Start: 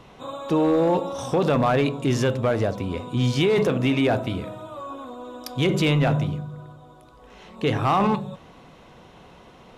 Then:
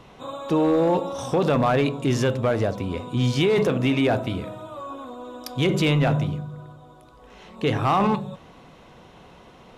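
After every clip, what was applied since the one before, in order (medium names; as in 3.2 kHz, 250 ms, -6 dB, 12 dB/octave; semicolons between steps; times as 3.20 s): no audible change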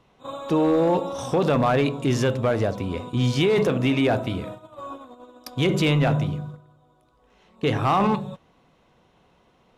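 gate -35 dBFS, range -12 dB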